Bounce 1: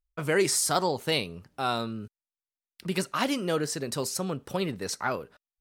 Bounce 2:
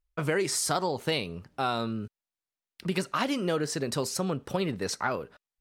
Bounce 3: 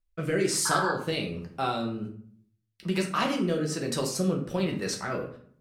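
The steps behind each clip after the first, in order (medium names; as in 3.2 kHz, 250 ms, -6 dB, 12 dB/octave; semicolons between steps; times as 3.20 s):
treble shelf 7.3 kHz -8 dB; compression, threshold -27 dBFS, peak gain reduction 8 dB; trim +3 dB
rotary cabinet horn 1.2 Hz; painted sound noise, 0.65–0.92 s, 830–1700 Hz -31 dBFS; reverberation RT60 0.55 s, pre-delay 5 ms, DRR 0.5 dB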